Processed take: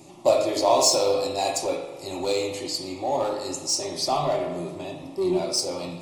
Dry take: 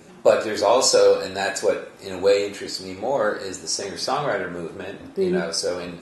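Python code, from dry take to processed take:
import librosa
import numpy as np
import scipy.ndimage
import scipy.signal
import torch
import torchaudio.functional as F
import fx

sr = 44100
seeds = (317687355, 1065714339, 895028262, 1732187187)

p1 = 10.0 ** (-22.0 / 20.0) * (np.abs((x / 10.0 ** (-22.0 / 20.0) + 3.0) % 4.0 - 2.0) - 1.0)
p2 = x + (p1 * 10.0 ** (-10.5 / 20.0))
p3 = fx.fixed_phaser(p2, sr, hz=310.0, stages=8)
y = fx.rev_spring(p3, sr, rt60_s=1.3, pass_ms=(40,), chirp_ms=40, drr_db=6.5)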